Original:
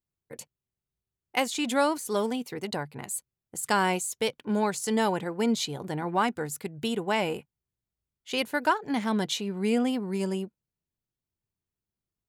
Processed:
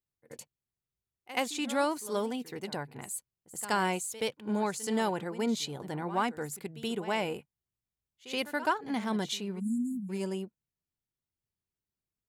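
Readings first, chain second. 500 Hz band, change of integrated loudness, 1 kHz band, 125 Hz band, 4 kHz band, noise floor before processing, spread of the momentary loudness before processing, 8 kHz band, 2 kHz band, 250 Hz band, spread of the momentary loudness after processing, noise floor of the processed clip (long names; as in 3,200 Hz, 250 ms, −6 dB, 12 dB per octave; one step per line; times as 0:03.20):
−4.5 dB, −4.5 dB, −4.5 dB, −4.5 dB, −4.5 dB, below −85 dBFS, 9 LU, −4.5 dB, −4.5 dB, −4.5 dB, 10 LU, below −85 dBFS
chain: echo ahead of the sound 76 ms −15 dB
time-frequency box erased 0:09.60–0:10.10, 260–6,600 Hz
level −4.5 dB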